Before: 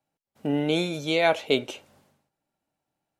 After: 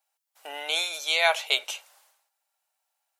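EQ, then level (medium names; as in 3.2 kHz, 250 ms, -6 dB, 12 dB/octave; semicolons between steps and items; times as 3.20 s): high-pass 750 Hz 24 dB/octave; treble shelf 4.8 kHz +10 dB; +2.0 dB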